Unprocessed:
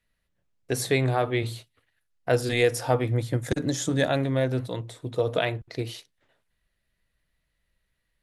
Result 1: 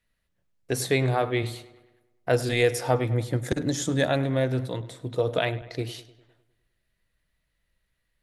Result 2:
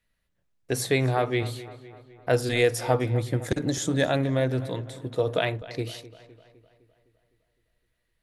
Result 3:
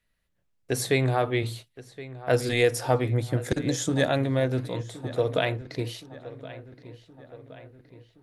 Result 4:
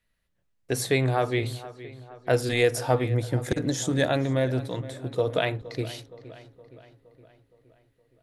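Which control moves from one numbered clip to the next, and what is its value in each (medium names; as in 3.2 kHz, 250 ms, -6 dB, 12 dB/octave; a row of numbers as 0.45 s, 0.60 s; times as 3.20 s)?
filtered feedback delay, time: 101 ms, 255 ms, 1070 ms, 467 ms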